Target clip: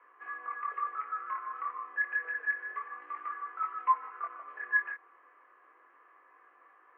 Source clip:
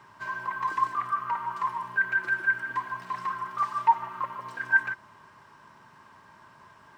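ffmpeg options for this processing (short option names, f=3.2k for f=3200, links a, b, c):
-af "highpass=f=240:t=q:w=0.5412,highpass=f=240:t=q:w=1.307,lowpass=f=2.3k:t=q:w=0.5176,lowpass=f=2.3k:t=q:w=0.7071,lowpass=f=2.3k:t=q:w=1.932,afreqshift=120,flanger=delay=19:depth=6.9:speed=0.29,volume=-4dB"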